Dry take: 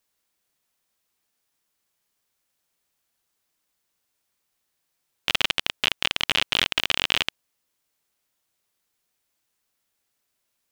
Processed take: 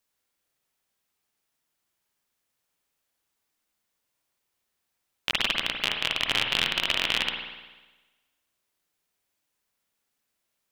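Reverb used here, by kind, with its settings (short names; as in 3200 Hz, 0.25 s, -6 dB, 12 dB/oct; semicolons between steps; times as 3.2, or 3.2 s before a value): spring tank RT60 1.2 s, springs 50 ms, chirp 75 ms, DRR 2 dB; gain -3.5 dB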